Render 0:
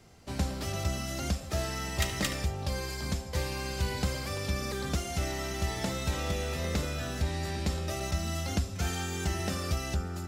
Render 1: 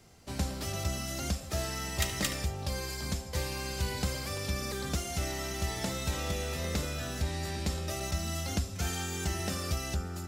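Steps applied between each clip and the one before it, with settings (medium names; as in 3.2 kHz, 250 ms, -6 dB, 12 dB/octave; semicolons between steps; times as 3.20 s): treble shelf 5.3 kHz +5.5 dB; trim -2 dB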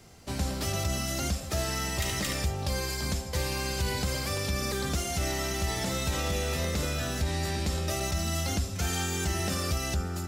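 peak limiter -24.5 dBFS, peak gain reduction 9 dB; trim +5 dB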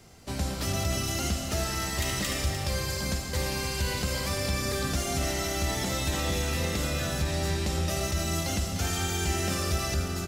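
delay 300 ms -9 dB; on a send at -6 dB: reverberation RT60 2.1 s, pre-delay 55 ms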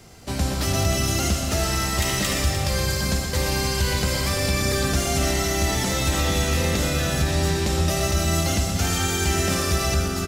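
delay 122 ms -8 dB; trim +6 dB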